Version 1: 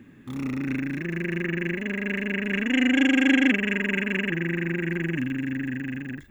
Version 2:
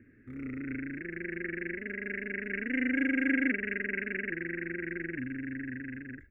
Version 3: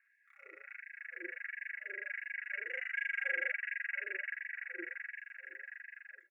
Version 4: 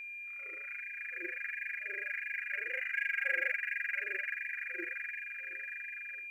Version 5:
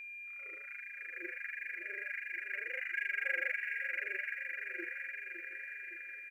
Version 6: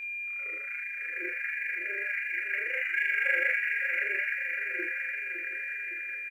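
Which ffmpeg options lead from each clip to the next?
ffmpeg -i in.wav -af "firequalizer=gain_entry='entry(100,0);entry(160,-15);entry(240,-6);entry(470,-3);entry(960,-30);entry(1400,-2);entry(2200,-2);entry(3300,-30);entry(8200,-26)':delay=0.05:min_phase=1,volume=-3.5dB" out.wav
ffmpeg -i in.wav -af "aecho=1:1:3.6:0.51,afftfilt=real='re*gte(b*sr/1024,340*pow(1600/340,0.5+0.5*sin(2*PI*1.4*pts/sr)))':imag='im*gte(b*sr/1024,340*pow(1600/340,0.5+0.5*sin(2*PI*1.4*pts/sr)))':win_size=1024:overlap=0.75,volume=-5dB" out.wav
ffmpeg -i in.wav -filter_complex "[0:a]aeval=exprs='val(0)+0.00631*sin(2*PI*2400*n/s)':channel_layout=same,asplit=2[link_01][link_02];[link_02]acrusher=bits=5:mode=log:mix=0:aa=0.000001,volume=-10dB[link_03];[link_01][link_03]amix=inputs=2:normalize=0" out.wav
ffmpeg -i in.wav -af "aecho=1:1:561|1122|1683|2244|2805:0.316|0.158|0.0791|0.0395|0.0198,volume=-2.5dB" out.wav
ffmpeg -i in.wav -filter_complex "[0:a]asplit=2[link_01][link_02];[link_02]adelay=25,volume=-5dB[link_03];[link_01][link_03]amix=inputs=2:normalize=0,volume=7dB" out.wav

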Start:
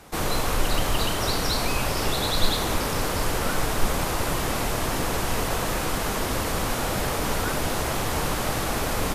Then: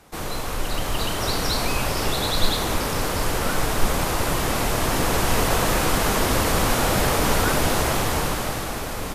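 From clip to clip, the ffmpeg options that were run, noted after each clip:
ffmpeg -i in.wav -af "dynaudnorm=framelen=130:gausssize=17:maxgain=11.5dB,volume=-4dB" out.wav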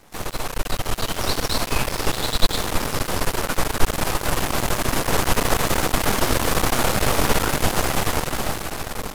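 ffmpeg -i in.wav -af "aeval=exprs='max(val(0),0)':channel_layout=same,volume=4dB" out.wav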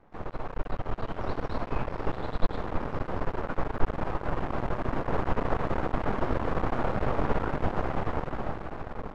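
ffmpeg -i in.wav -af "lowpass=1300,volume=-6.5dB" out.wav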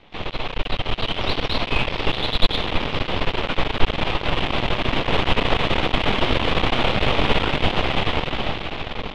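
ffmpeg -i in.wav -af "lowpass=frequency=3400:width_type=q:width=2.9,aexciter=amount=2.1:drive=9.9:freq=2200,volume=7dB" out.wav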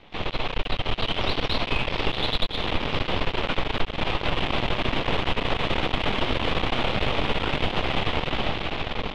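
ffmpeg -i in.wav -af "acompressor=threshold=-18dB:ratio=10" out.wav

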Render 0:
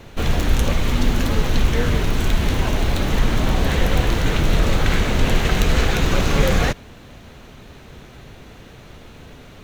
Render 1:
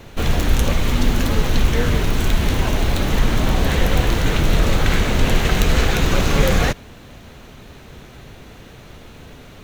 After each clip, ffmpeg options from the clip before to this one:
ffmpeg -i in.wav -af "highshelf=frequency=9400:gain=4,volume=1dB" out.wav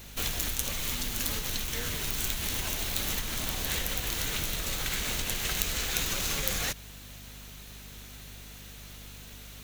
ffmpeg -i in.wav -af "acompressor=threshold=-17dB:ratio=6,crystalizer=i=9.5:c=0,aeval=exprs='val(0)+0.0251*(sin(2*PI*50*n/s)+sin(2*PI*2*50*n/s)/2+sin(2*PI*3*50*n/s)/3+sin(2*PI*4*50*n/s)/4+sin(2*PI*5*50*n/s)/5)':channel_layout=same,volume=-15.5dB" out.wav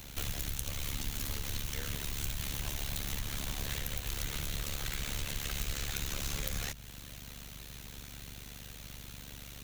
ffmpeg -i in.wav -filter_complex "[0:a]tremolo=f=71:d=0.857,acrossover=split=170[link_01][link_02];[link_02]acompressor=threshold=-43dB:ratio=2[link_03];[link_01][link_03]amix=inputs=2:normalize=0,volume=2.5dB" out.wav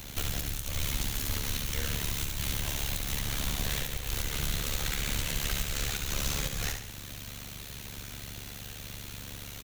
ffmpeg -i in.wav -af "alimiter=limit=-20.5dB:level=0:latency=1:release=172,aecho=1:1:69|138|207|276|345:0.501|0.221|0.097|0.0427|0.0188,volume=4.5dB" out.wav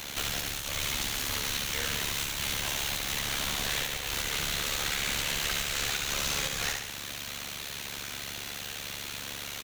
ffmpeg -i in.wav -filter_complex "[0:a]asplit=2[link_01][link_02];[link_02]highpass=frequency=720:poles=1,volume=19dB,asoftclip=type=tanh:threshold=-14.5dB[link_03];[link_01][link_03]amix=inputs=2:normalize=0,lowpass=frequency=5800:poles=1,volume=-6dB,volume=-4dB" out.wav

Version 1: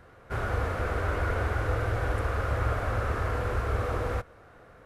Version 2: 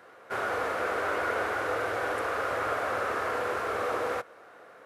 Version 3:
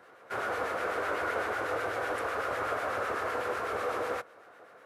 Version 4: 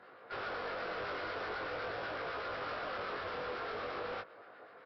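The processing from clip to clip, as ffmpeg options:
ffmpeg -i in.wav -af "highpass=380,volume=3.5dB" out.wav
ffmpeg -i in.wav -filter_complex "[0:a]acrossover=split=1300[link_01][link_02];[link_01]aeval=exprs='val(0)*(1-0.5/2+0.5/2*cos(2*PI*8*n/s))':channel_layout=same[link_03];[link_02]aeval=exprs='val(0)*(1-0.5/2-0.5/2*cos(2*PI*8*n/s))':channel_layout=same[link_04];[link_03][link_04]amix=inputs=2:normalize=0" out.wav
ffmpeg -i in.wav -af "aresample=11025,asoftclip=type=tanh:threshold=-36.5dB,aresample=44100,flanger=delay=19:depth=3:speed=0.44,volume=2dB" out.wav

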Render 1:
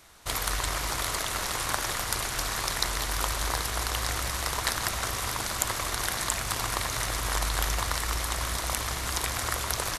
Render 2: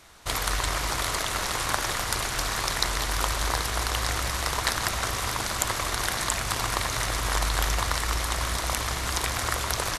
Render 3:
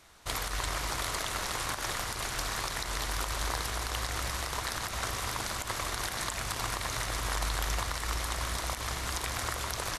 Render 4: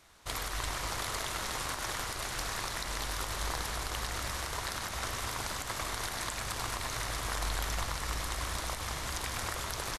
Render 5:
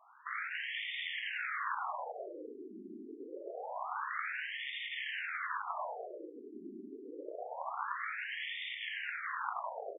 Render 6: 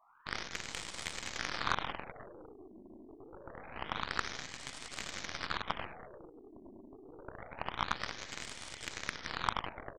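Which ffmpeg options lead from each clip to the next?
ffmpeg -i in.wav -af "highshelf=frequency=11000:gain=-7.5,volume=3dB" out.wav
ffmpeg -i in.wav -af "alimiter=limit=-12.5dB:level=0:latency=1:release=88,volume=-5.5dB" out.wav
ffmpeg -i in.wav -filter_complex "[0:a]asplit=9[link_01][link_02][link_03][link_04][link_05][link_06][link_07][link_08][link_09];[link_02]adelay=101,afreqshift=-49,volume=-8.5dB[link_10];[link_03]adelay=202,afreqshift=-98,volume=-12.5dB[link_11];[link_04]adelay=303,afreqshift=-147,volume=-16.5dB[link_12];[link_05]adelay=404,afreqshift=-196,volume=-20.5dB[link_13];[link_06]adelay=505,afreqshift=-245,volume=-24.6dB[link_14];[link_07]adelay=606,afreqshift=-294,volume=-28.6dB[link_15];[link_08]adelay=707,afreqshift=-343,volume=-32.6dB[link_16];[link_09]adelay=808,afreqshift=-392,volume=-36.6dB[link_17];[link_01][link_10][link_11][link_12][link_13][link_14][link_15][link_16][link_17]amix=inputs=9:normalize=0,volume=-3dB" out.wav
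ffmpeg -i in.wav -af "alimiter=level_in=2dB:limit=-24dB:level=0:latency=1:release=11,volume=-2dB,afftfilt=real='re*between(b*sr/1024,290*pow(2600/290,0.5+0.5*sin(2*PI*0.26*pts/sr))/1.41,290*pow(2600/290,0.5+0.5*sin(2*PI*0.26*pts/sr))*1.41)':imag='im*between(b*sr/1024,290*pow(2600/290,0.5+0.5*sin(2*PI*0.26*pts/sr))/1.41,290*pow(2600/290,0.5+0.5*sin(2*PI*0.26*pts/sr))*1.41)':win_size=1024:overlap=0.75,volume=5.5dB" out.wav
ffmpeg -i in.wav -af "aeval=exprs='0.0841*(cos(1*acos(clip(val(0)/0.0841,-1,1)))-cos(1*PI/2))+0.015*(cos(3*acos(clip(val(0)/0.0841,-1,1)))-cos(3*PI/2))+0.00841*(cos(4*acos(clip(val(0)/0.0841,-1,1)))-cos(4*PI/2))+0.00188*(cos(5*acos(clip(val(0)/0.0841,-1,1)))-cos(5*PI/2))+0.00944*(cos(7*acos(clip(val(0)/0.0841,-1,1)))-cos(7*PI/2))':channel_layout=same,bandreject=frequency=2700:width=18,volume=9.5dB" out.wav

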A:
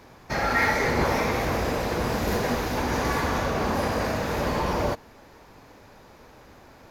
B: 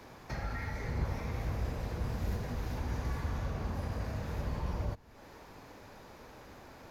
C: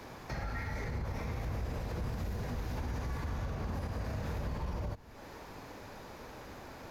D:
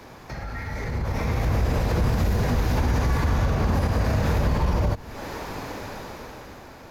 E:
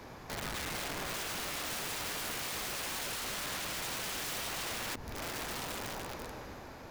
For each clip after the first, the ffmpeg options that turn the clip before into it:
ffmpeg -i in.wav -filter_complex "[0:a]acrossover=split=140[link_01][link_02];[link_02]acompressor=threshold=-43dB:ratio=4[link_03];[link_01][link_03]amix=inputs=2:normalize=0,volume=-2dB" out.wav
ffmpeg -i in.wav -af "alimiter=level_in=9dB:limit=-24dB:level=0:latency=1:release=73,volume=-9dB,volume=4dB" out.wav
ffmpeg -i in.wav -af "dynaudnorm=framelen=200:gausssize=11:maxgain=11.5dB,volume=3.5dB" out.wav
ffmpeg -i in.wav -af "aeval=exprs='(mod(28.2*val(0)+1,2)-1)/28.2':channel_layout=same,volume=-4.5dB" out.wav

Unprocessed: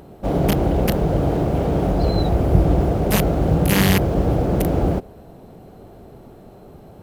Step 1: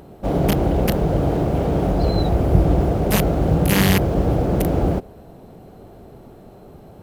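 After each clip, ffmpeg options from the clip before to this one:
ffmpeg -i in.wav -af anull out.wav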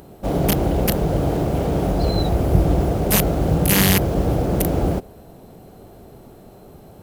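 ffmpeg -i in.wav -af "highshelf=frequency=4500:gain=9,volume=-1dB" out.wav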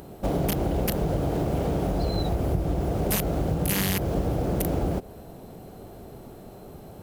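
ffmpeg -i in.wav -af "acompressor=threshold=-22dB:ratio=6" out.wav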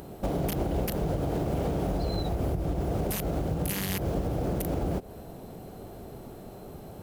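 ffmpeg -i in.wav -af "alimiter=limit=-20dB:level=0:latency=1:release=151" out.wav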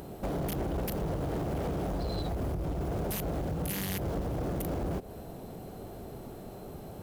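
ffmpeg -i in.wav -af "asoftclip=type=tanh:threshold=-28dB" out.wav

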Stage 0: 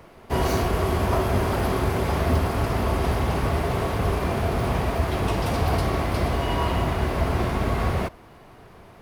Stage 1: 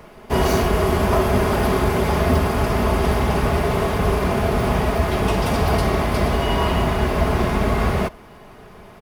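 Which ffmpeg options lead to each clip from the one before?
ffmpeg -i in.wav -af "bandreject=frequency=4100:width=25,aecho=1:1:4.8:0.36,volume=4.5dB" out.wav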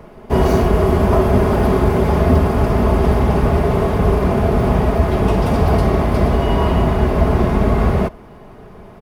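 ffmpeg -i in.wav -af "tiltshelf=frequency=1200:gain=5.5" out.wav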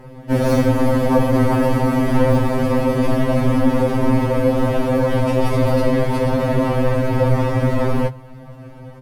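ffmpeg -i in.wav -af "afreqshift=-150,afftfilt=real='re*2.45*eq(mod(b,6),0)':imag='im*2.45*eq(mod(b,6),0)':win_size=2048:overlap=0.75,volume=3dB" out.wav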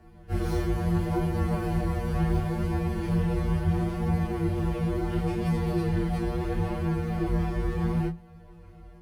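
ffmpeg -i in.wav -af "flanger=delay=20:depth=4.9:speed=0.72,afreqshift=-170,volume=-8.5dB" out.wav

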